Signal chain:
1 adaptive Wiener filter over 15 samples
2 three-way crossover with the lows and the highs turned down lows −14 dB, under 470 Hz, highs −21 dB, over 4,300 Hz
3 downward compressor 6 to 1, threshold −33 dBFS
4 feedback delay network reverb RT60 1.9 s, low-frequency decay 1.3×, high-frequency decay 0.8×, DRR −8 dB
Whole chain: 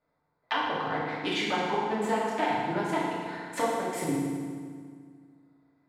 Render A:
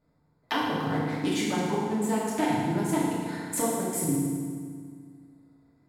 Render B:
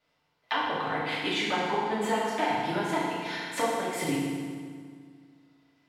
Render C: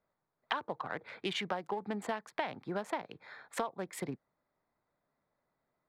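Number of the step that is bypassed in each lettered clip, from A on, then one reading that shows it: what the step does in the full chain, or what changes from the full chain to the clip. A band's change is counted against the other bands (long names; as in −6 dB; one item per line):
2, 8 kHz band +11.0 dB
1, 4 kHz band +2.5 dB
4, change in momentary loudness spread −3 LU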